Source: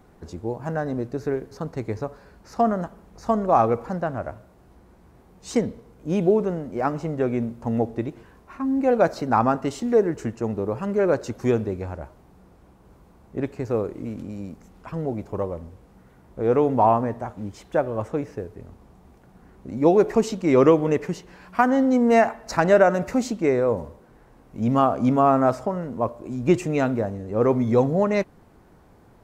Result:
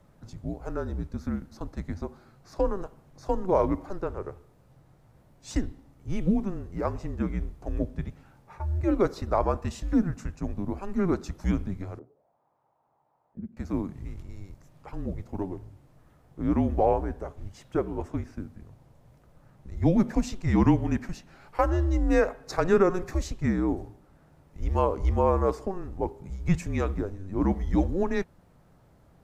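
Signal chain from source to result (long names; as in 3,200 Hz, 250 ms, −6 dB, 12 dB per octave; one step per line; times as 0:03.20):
frequency shifter −190 Hz
0:11.99–0:13.57: envelope filter 210–1,100 Hz, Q 2.9, down, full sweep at −31 dBFS
level −5 dB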